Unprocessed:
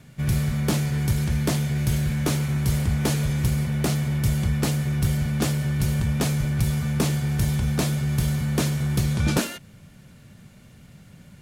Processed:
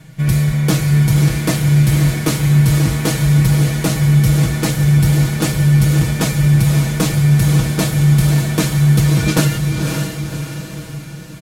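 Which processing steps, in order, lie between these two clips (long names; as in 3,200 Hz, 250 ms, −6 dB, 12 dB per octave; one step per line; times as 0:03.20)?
comb filter 6.3 ms, depth 95%
feedback delay with all-pass diffusion 554 ms, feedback 50%, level −4.5 dB
level +4.5 dB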